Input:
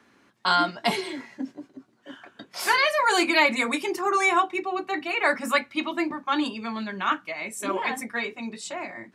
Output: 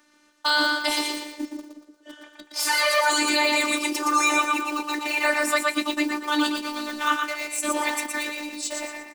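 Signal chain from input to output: in parallel at -7 dB: sample gate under -31 dBFS; on the sum: tone controls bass -4 dB, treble +11 dB; on a send: frequency-shifting echo 0.117 s, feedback 37%, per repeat +47 Hz, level -5 dB; on the sum: robotiser 298 Hz; bell 13000 Hz -6 dB 0.66 oct; limiter -6 dBFS, peak gain reduction 7 dB

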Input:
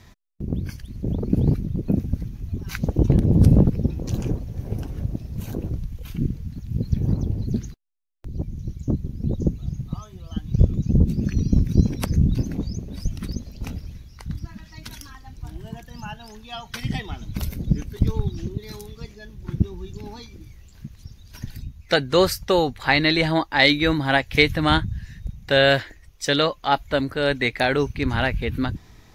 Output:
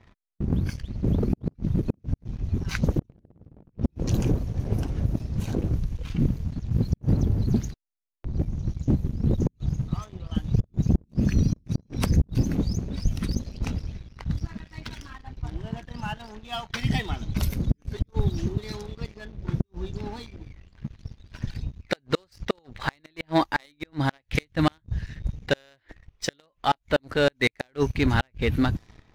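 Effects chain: flipped gate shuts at -9 dBFS, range -34 dB; low-pass opened by the level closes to 2500 Hz, open at -21.5 dBFS; sample leveller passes 2; gain -5 dB

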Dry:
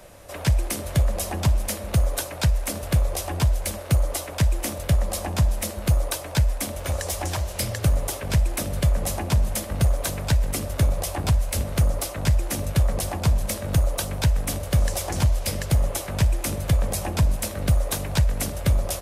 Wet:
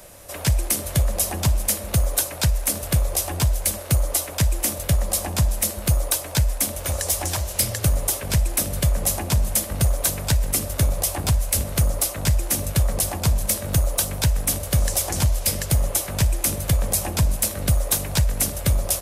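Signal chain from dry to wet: high shelf 5500 Hz +11 dB

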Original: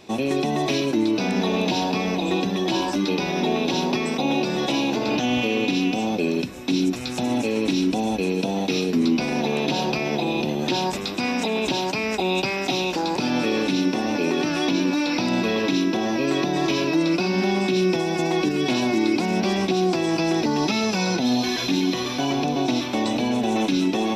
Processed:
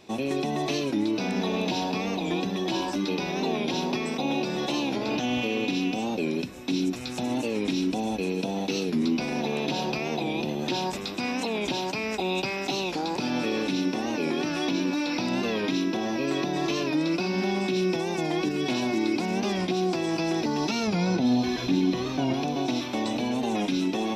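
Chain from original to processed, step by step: 20.88–22.34 tilt -2 dB/oct; record warp 45 rpm, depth 100 cents; gain -5 dB

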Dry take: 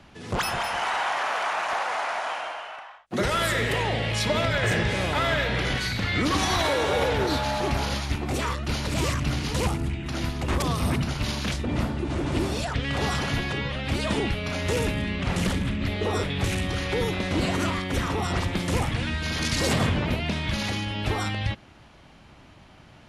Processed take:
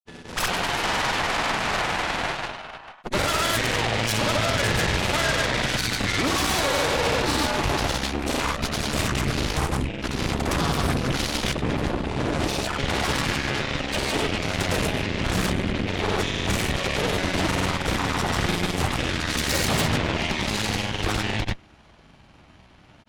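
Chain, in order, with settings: grains 0.1 s, grains 20/s, pitch spread up and down by 0 st; added harmonics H 8 -10 dB, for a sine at -13.5 dBFS

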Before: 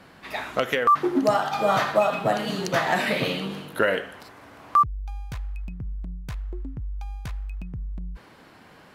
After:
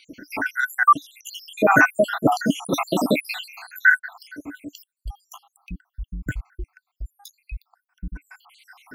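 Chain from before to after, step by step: random spectral dropouts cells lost 81%; high shelf 4500 Hz +10 dB; small resonant body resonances 290/1500 Hz, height 18 dB, ringing for 55 ms; gain +4.5 dB

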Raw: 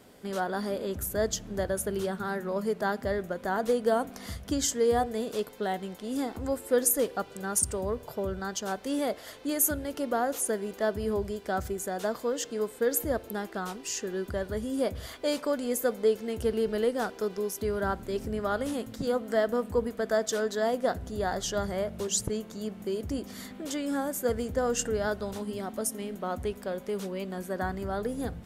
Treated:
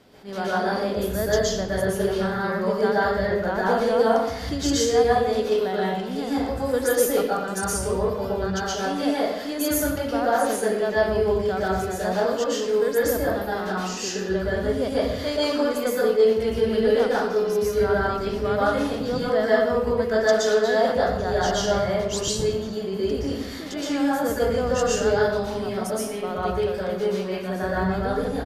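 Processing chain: resonant high shelf 6300 Hz -6.5 dB, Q 1.5; reverb RT60 0.85 s, pre-delay 0.112 s, DRR -7.5 dB; downsampling 32000 Hz; attack slew limiter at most 230 dB/s

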